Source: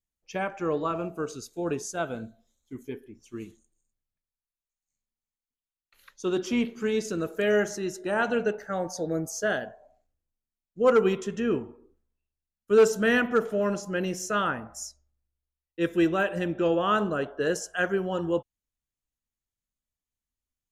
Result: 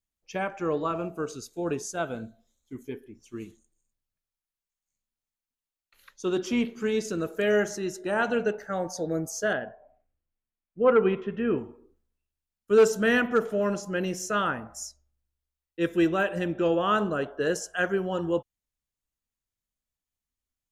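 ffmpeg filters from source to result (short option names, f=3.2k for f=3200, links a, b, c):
-filter_complex "[0:a]asettb=1/sr,asplit=3[a][b][c];[a]atrim=end=9.534[d];[b]atrim=start=9.53:end=11.58,asetpts=PTS-STARTPTS,afade=t=in:d=0.004:c=qsin,afade=t=out:st=2.046:d=0.004:c=qsin,lowpass=f=2.8k:w=0.5412,lowpass=f=2.8k:w=1.3066[e];[c]atrim=start=11.576[f];[d][e]acrossfade=d=0.004:c1=hsin:c2=qsin[g];[g][f]acrossfade=d=0.004:c1=qsin:c2=hsin"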